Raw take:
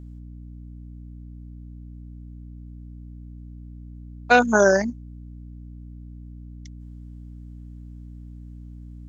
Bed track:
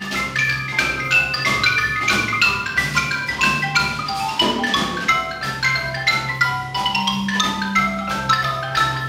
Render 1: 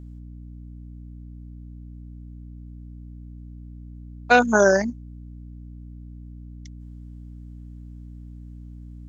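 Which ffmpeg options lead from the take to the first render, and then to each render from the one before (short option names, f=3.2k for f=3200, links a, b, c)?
-af anull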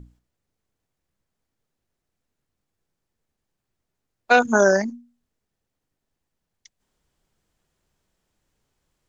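-af "bandreject=f=60:t=h:w=6,bandreject=f=120:t=h:w=6,bandreject=f=180:t=h:w=6,bandreject=f=240:t=h:w=6,bandreject=f=300:t=h:w=6"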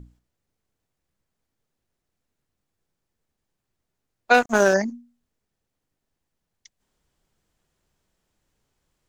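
-filter_complex "[0:a]asettb=1/sr,asplit=3[a][b][c];[a]atrim=end=4.344[d];[b]atrim=start=4.34:end=4.74,asetpts=PTS-STARTPTS,afade=t=in:d=0.004:c=qsin,afade=t=out:st=0.396:d=0.004:c=qsin,aeval=exprs='sgn(val(0))*max(abs(val(0))-0.0422,0)':c=same[e];[c]atrim=start=4.736[f];[d][e]acrossfade=d=0.004:c1=hsin:c2=qsin[g];[g][f]acrossfade=d=0.004:c1=qsin:c2=hsin"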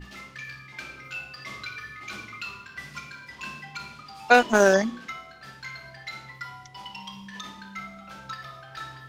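-filter_complex "[1:a]volume=-20.5dB[a];[0:a][a]amix=inputs=2:normalize=0"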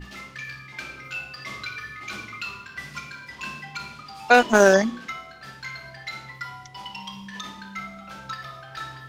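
-af "volume=3dB,alimiter=limit=-1dB:level=0:latency=1"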